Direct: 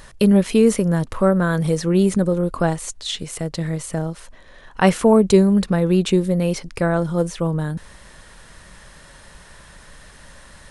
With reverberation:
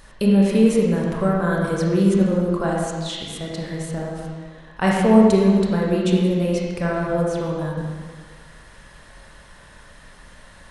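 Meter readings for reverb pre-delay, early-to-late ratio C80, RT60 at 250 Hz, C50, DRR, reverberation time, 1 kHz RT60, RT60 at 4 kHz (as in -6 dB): 17 ms, 1.5 dB, 1.5 s, -1.0 dB, -3.5 dB, 1.6 s, 1.6 s, 1.5 s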